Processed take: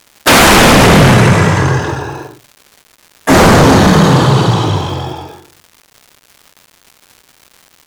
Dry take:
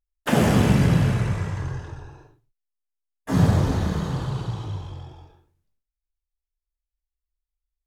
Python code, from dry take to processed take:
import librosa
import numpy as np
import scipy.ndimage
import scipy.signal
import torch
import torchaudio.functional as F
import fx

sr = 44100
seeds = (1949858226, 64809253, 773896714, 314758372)

y = scipy.signal.sosfilt(scipy.signal.butter(2, 180.0, 'highpass', fs=sr, output='sos'), x)
y = fx.fold_sine(y, sr, drive_db=17, ceiling_db=-6.5)
y = fx.dmg_crackle(y, sr, seeds[0], per_s=310.0, level_db=-33.0)
y = F.gain(torch.from_numpy(y), 4.5).numpy()